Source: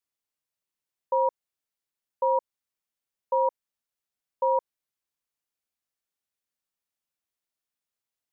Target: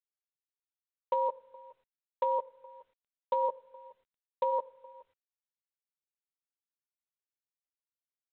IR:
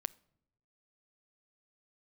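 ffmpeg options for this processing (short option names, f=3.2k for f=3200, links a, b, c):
-filter_complex "[0:a]asplit=3[a][b][c];[a]afade=t=out:st=3.43:d=0.02[d];[b]lowpass=f=1.1k:p=1,afade=t=in:st=3.43:d=0.02,afade=t=out:st=4.5:d=0.02[e];[c]afade=t=in:st=4.5:d=0.02[f];[d][e][f]amix=inputs=3:normalize=0,alimiter=limit=-20dB:level=0:latency=1:release=75,asplit=2[g][h];[h]adelay=14,volume=-5dB[i];[g][i]amix=inputs=2:normalize=0,asplit=2[j][k];[k]adelay=419.8,volume=-22dB,highshelf=f=4k:g=-9.45[l];[j][l]amix=inputs=2:normalize=0[m];[1:a]atrim=start_sample=2205,asetrate=36162,aresample=44100[n];[m][n]afir=irnorm=-1:irlink=0,volume=1.5dB" -ar 8000 -c:a adpcm_g726 -b:a 32k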